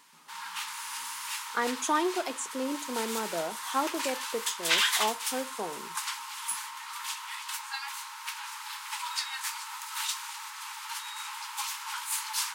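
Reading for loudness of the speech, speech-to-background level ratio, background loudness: -33.5 LUFS, 0.0 dB, -33.5 LUFS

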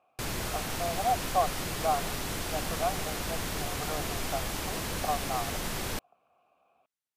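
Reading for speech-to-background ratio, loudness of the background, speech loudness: -1.5 dB, -33.5 LUFS, -35.0 LUFS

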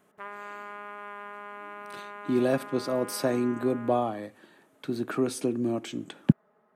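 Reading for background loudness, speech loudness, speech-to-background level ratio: -42.0 LUFS, -29.0 LUFS, 13.0 dB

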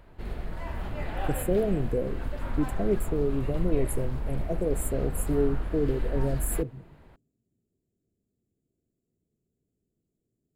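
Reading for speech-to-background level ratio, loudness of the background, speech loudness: 5.5 dB, -36.0 LUFS, -30.5 LUFS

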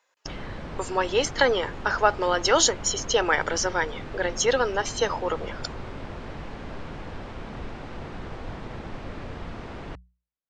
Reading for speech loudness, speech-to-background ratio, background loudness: -24.0 LUFS, 14.5 dB, -38.5 LUFS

